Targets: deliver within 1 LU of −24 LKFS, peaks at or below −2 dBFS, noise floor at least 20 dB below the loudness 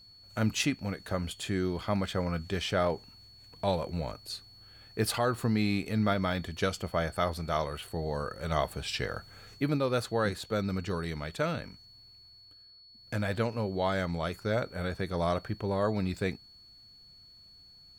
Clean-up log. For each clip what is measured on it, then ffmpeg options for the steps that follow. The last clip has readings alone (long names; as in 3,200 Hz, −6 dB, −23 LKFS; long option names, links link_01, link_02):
interfering tone 4,400 Hz; level of the tone −53 dBFS; integrated loudness −32.0 LKFS; sample peak −14.0 dBFS; target loudness −24.0 LKFS
→ -af "bandreject=frequency=4400:width=30"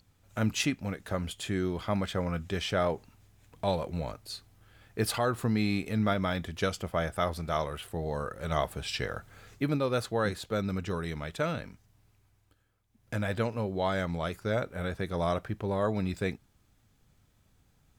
interfering tone none found; integrated loudness −32.0 LKFS; sample peak −13.5 dBFS; target loudness −24.0 LKFS
→ -af "volume=8dB"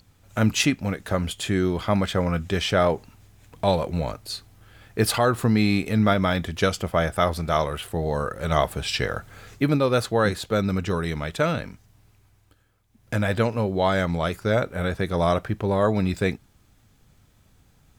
integrated loudness −24.0 LKFS; sample peak −5.5 dBFS; background noise floor −60 dBFS